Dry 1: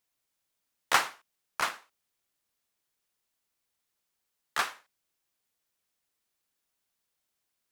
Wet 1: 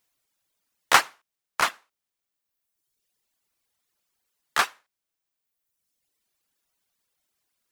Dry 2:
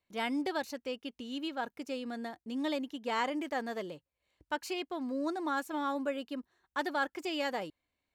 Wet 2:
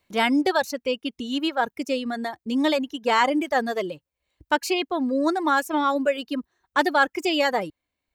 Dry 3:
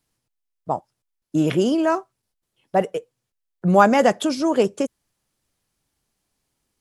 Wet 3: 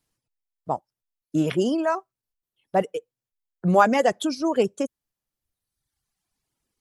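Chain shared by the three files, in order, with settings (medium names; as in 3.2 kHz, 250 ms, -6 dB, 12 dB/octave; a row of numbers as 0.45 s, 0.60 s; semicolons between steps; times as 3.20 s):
reverb removal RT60 1.4 s; normalise loudness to -24 LUFS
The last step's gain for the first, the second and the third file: +7.0 dB, +13.0 dB, -2.5 dB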